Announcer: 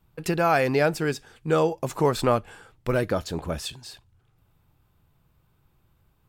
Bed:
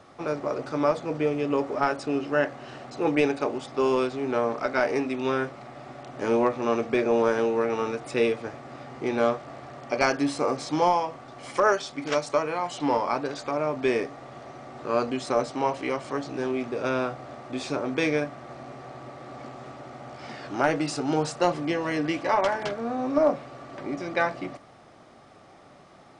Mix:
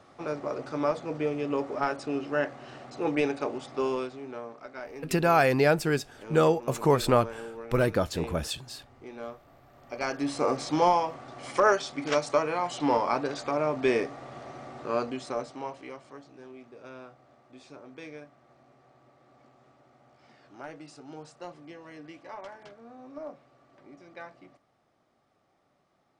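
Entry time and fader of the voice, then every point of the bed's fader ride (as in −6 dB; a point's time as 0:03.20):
4.85 s, −0.5 dB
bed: 0:03.78 −4 dB
0:04.53 −16.5 dB
0:09.66 −16.5 dB
0:10.45 −0.5 dB
0:14.66 −0.5 dB
0:16.37 −19 dB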